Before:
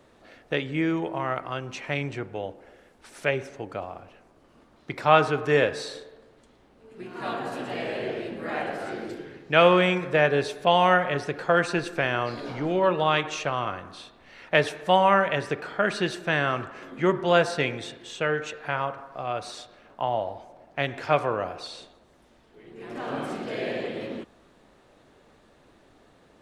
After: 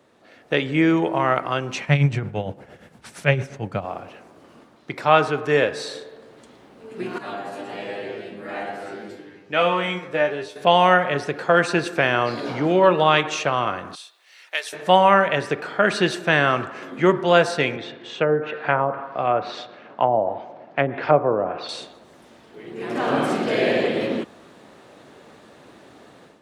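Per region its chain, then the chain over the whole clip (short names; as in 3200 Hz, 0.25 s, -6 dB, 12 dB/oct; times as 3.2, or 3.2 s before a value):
1.81–3.85 resonant low shelf 220 Hz +10 dB, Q 1.5 + tremolo 8.7 Hz, depth 65%
7.18–10.56 flange 1.2 Hz, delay 5.8 ms, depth 7.9 ms, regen +71% + resonator 100 Hz, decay 0.2 s, mix 90%
13.95–14.73 brick-wall FIR high-pass 300 Hz + differentiator
17.76–21.69 treble ducked by the level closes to 730 Hz, closed at -22.5 dBFS + BPF 110–3600 Hz
whole clip: HPF 120 Hz; AGC gain up to 11.5 dB; gain -1 dB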